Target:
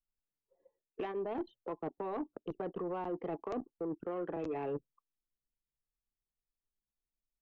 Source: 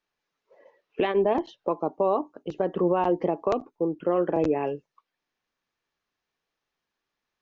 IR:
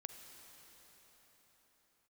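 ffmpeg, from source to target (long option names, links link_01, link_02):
-filter_complex "[0:a]bandreject=frequency=580:width=12,anlmdn=2.51,acrossover=split=470|1600[link_01][link_02][link_03];[link_01]acompressor=threshold=-33dB:ratio=4[link_04];[link_02]acompressor=threshold=-35dB:ratio=4[link_05];[link_03]acompressor=threshold=-51dB:ratio=4[link_06];[link_04][link_05][link_06]amix=inputs=3:normalize=0,alimiter=limit=-23dB:level=0:latency=1:release=309,areverse,acompressor=threshold=-41dB:ratio=12,areverse,asoftclip=type=tanh:threshold=-38dB,volume=8.5dB"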